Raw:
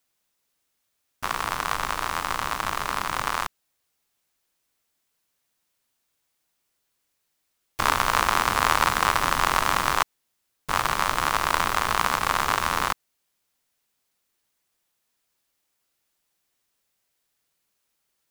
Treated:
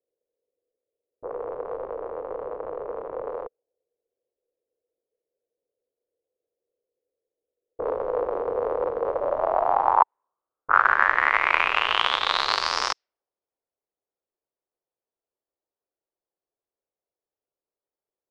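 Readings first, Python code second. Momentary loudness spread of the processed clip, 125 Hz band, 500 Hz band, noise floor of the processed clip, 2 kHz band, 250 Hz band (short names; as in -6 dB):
15 LU, under -10 dB, +8.0 dB, under -85 dBFS, +1.0 dB, -6.0 dB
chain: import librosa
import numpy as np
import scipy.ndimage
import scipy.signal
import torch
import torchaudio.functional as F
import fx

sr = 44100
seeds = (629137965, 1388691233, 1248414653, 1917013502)

y = fx.env_lowpass(x, sr, base_hz=530.0, full_db=-18.5)
y = fx.low_shelf_res(y, sr, hz=300.0, db=-11.0, q=1.5)
y = fx.filter_sweep_lowpass(y, sr, from_hz=490.0, to_hz=5300.0, start_s=9.04, end_s=12.85, q=6.4)
y = y * librosa.db_to_amplitude(-3.0)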